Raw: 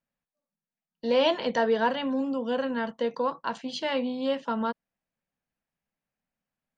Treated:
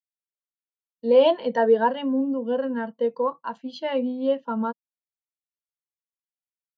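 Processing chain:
every bin expanded away from the loudest bin 1.5 to 1
level +5.5 dB

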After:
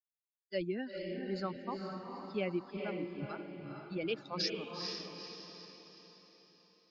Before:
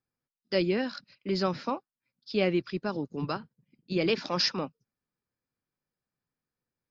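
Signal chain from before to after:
spectral dynamics exaggerated over time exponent 2
feedback delay with all-pass diffusion 457 ms, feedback 47%, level −3.5 dB
level −6.5 dB

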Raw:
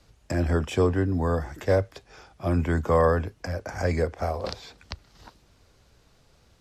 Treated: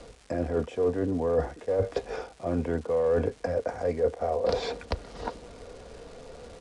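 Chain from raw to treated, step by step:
high-shelf EQ 4,600 Hz −8.5 dB
in parallel at −10 dB: wave folding −21 dBFS
on the sum: parametric band 500 Hz +13.5 dB 1.3 octaves
reversed playback
downward compressor 10 to 1, threshold −32 dBFS, peak gain reduction 26 dB
reversed playback
comb filter 4.2 ms, depth 36%
surface crackle 480 per second −49 dBFS
downsampling to 22,050 Hz
level +7 dB

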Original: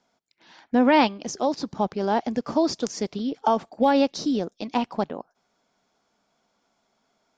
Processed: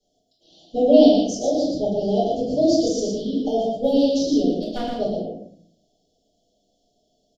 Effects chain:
Chebyshev band-stop filter 720–3,000 Hz, order 5
0:04.43–0:04.97: gain into a clipping stage and back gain 21 dB
single-tap delay 117 ms −4.5 dB
rectangular room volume 78 cubic metres, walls mixed, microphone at 4.2 metres
level −11 dB

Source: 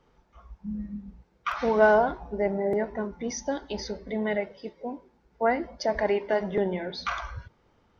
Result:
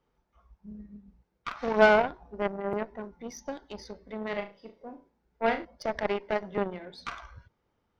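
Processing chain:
harmonic generator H 3 −18 dB, 4 −23 dB, 7 −25 dB, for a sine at −8 dBFS
0:04.23–0:05.65: flutter between parallel walls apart 6.1 metres, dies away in 0.28 s
level +1.5 dB

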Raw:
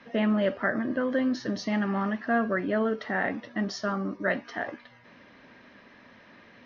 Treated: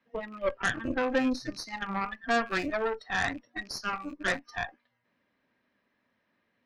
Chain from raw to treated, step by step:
loose part that buzzes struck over −39 dBFS, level −21 dBFS
noise reduction from a noise print of the clip's start 22 dB
harmonic generator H 6 −15 dB, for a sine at −16 dBFS

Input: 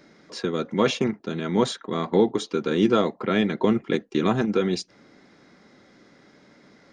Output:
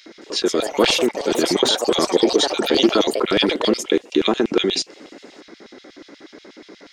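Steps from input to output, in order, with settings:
auto-filter high-pass square 8.3 Hz 330–3,100 Hz
in parallel at +1 dB: compressor whose output falls as the input rises −28 dBFS, ratio −1
on the sum: delay with pitch and tempo change per echo 218 ms, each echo +5 semitones, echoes 3, each echo −6 dB

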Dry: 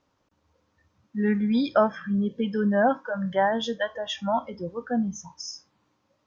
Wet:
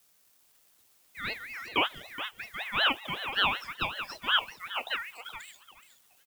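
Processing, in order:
automatic gain control gain up to 16.5 dB
resonant band-pass 1,100 Hz, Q 1.7
background noise blue −48 dBFS
tape wow and flutter 26 cents
dead-zone distortion −49.5 dBFS
repeating echo 423 ms, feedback 19%, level −11 dB
ring modulator whose carrier an LFO sweeps 2,000 Hz, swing 20%, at 5.3 Hz
level −6 dB

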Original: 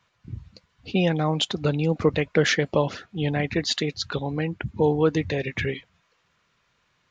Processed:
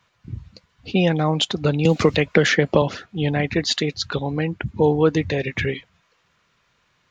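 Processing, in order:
0:01.85–0:02.82: multiband upward and downward compressor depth 100%
level +3.5 dB

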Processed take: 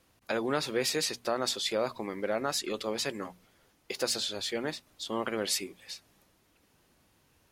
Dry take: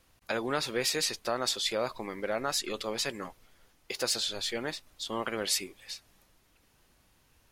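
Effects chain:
high-pass filter 190 Hz 6 dB per octave
low-shelf EQ 440 Hz +8.5 dB
mains-hum notches 60/120/180/240 Hz
level −1.5 dB

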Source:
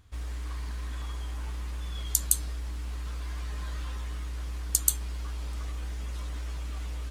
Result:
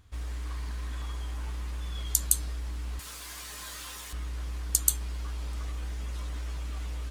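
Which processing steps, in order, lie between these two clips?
0:02.99–0:04.13: RIAA equalisation recording

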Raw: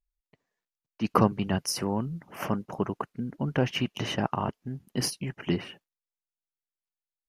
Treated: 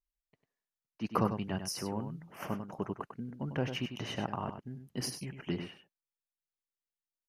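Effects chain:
single-tap delay 98 ms −8.5 dB
level −8 dB

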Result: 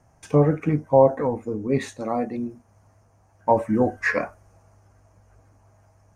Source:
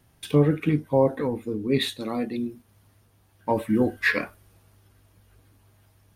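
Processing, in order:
drawn EQ curve 110 Hz 0 dB, 380 Hz −3 dB, 670 Hz +8 dB, 2,400 Hz −6 dB, 3,600 Hz −20 dB, 6,300 Hz +4 dB, 12,000 Hz −18 dB
level +2 dB

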